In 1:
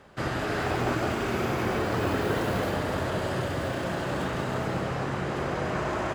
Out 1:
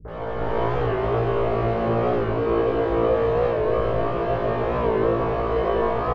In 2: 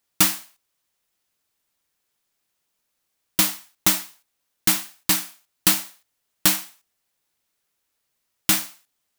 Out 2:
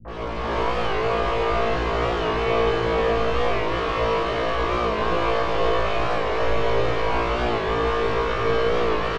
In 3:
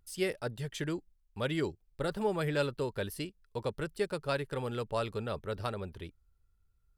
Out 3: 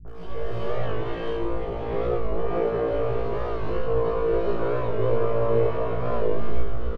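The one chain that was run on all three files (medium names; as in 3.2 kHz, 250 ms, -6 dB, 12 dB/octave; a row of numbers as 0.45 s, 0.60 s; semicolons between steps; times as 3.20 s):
one-bit comparator; overdrive pedal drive 13 dB, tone 2 kHz, clips at -29 dBFS; tape spacing loss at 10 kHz 45 dB; in parallel at +2 dB: compressor with a negative ratio -41 dBFS; on the sum: small resonant body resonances 450/660/1100/3000 Hz, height 9 dB, ringing for 40 ms; on a send: flutter echo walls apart 3 m, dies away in 0.8 s; on the sum: chorus voices 6, 0.4 Hz, delay 18 ms, depth 1.4 ms; three bands offset in time lows, mids, highs 50/80 ms, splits 190/1500 Hz; gated-style reverb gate 460 ms rising, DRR -8 dB; warped record 45 rpm, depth 100 cents; peak normalisation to -9 dBFS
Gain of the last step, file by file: -5.0 dB, +2.0 dB, -5.5 dB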